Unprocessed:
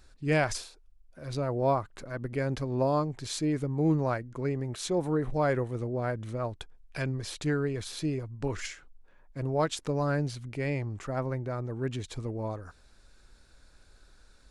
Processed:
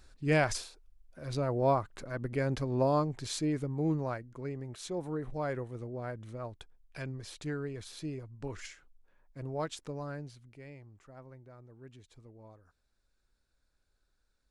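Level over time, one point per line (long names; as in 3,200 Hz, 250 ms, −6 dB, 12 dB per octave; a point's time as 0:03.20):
0:03.18 −1 dB
0:04.38 −8 dB
0:09.74 −8 dB
0:10.79 −19.5 dB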